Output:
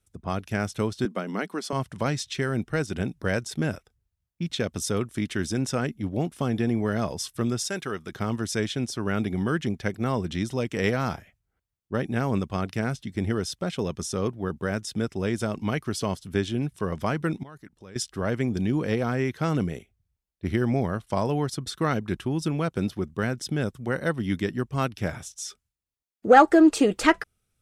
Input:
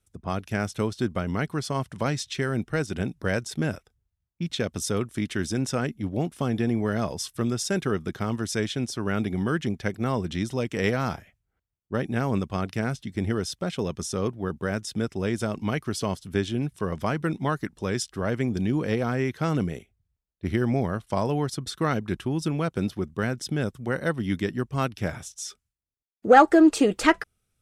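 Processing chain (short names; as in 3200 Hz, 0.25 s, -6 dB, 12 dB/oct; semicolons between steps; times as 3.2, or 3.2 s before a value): 1.05–1.73 elliptic high-pass 190 Hz; 7.68–8.12 low shelf 480 Hz -10 dB; 17.43–17.96 level quantiser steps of 22 dB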